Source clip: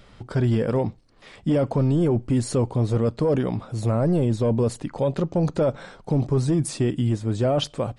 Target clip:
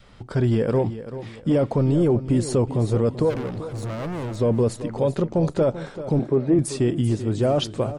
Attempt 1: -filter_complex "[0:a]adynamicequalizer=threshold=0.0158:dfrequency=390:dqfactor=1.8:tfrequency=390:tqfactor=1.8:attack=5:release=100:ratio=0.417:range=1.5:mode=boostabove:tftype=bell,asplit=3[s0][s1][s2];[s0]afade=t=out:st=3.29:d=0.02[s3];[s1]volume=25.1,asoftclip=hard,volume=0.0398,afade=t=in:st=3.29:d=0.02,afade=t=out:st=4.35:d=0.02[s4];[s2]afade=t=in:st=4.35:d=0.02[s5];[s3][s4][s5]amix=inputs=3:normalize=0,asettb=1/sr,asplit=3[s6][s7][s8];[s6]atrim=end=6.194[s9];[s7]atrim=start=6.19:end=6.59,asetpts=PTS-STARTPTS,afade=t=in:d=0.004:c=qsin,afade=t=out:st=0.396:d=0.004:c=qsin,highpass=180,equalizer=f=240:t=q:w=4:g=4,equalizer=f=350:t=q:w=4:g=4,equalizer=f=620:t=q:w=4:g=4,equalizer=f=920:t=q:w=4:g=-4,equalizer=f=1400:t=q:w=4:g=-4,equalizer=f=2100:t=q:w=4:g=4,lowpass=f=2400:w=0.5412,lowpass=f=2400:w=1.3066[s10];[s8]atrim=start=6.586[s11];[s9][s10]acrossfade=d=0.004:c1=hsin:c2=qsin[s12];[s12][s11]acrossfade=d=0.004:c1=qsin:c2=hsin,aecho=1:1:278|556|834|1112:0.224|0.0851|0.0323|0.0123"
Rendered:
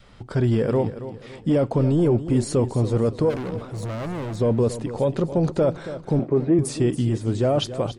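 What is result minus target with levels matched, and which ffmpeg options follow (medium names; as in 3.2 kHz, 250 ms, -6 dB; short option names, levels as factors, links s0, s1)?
echo 109 ms early
-filter_complex "[0:a]adynamicequalizer=threshold=0.0158:dfrequency=390:dqfactor=1.8:tfrequency=390:tqfactor=1.8:attack=5:release=100:ratio=0.417:range=1.5:mode=boostabove:tftype=bell,asplit=3[s0][s1][s2];[s0]afade=t=out:st=3.29:d=0.02[s3];[s1]volume=25.1,asoftclip=hard,volume=0.0398,afade=t=in:st=3.29:d=0.02,afade=t=out:st=4.35:d=0.02[s4];[s2]afade=t=in:st=4.35:d=0.02[s5];[s3][s4][s5]amix=inputs=3:normalize=0,asettb=1/sr,asplit=3[s6][s7][s8];[s6]atrim=end=6.194[s9];[s7]atrim=start=6.19:end=6.59,asetpts=PTS-STARTPTS,afade=t=in:d=0.004:c=qsin,afade=t=out:st=0.396:d=0.004:c=qsin,highpass=180,equalizer=f=240:t=q:w=4:g=4,equalizer=f=350:t=q:w=4:g=4,equalizer=f=620:t=q:w=4:g=4,equalizer=f=920:t=q:w=4:g=-4,equalizer=f=1400:t=q:w=4:g=-4,equalizer=f=2100:t=q:w=4:g=4,lowpass=f=2400:w=0.5412,lowpass=f=2400:w=1.3066[s10];[s8]atrim=start=6.586[s11];[s9][s10]acrossfade=d=0.004:c1=hsin:c2=qsin[s12];[s12][s11]acrossfade=d=0.004:c1=qsin:c2=hsin,aecho=1:1:387|774|1161|1548:0.224|0.0851|0.0323|0.0123"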